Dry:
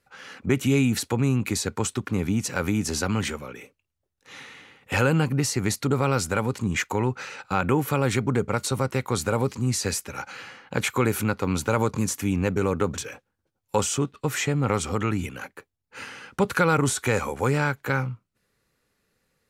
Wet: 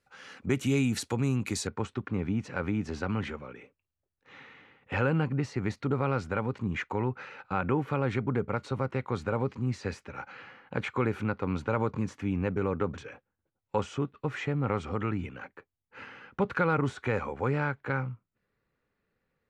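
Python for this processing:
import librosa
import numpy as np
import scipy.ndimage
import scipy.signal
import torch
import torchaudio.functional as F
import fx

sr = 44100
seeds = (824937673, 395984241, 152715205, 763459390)

y = fx.lowpass(x, sr, hz=fx.steps((0.0, 9500.0), (1.67, 2400.0)), slope=12)
y = F.gain(torch.from_numpy(y), -5.5).numpy()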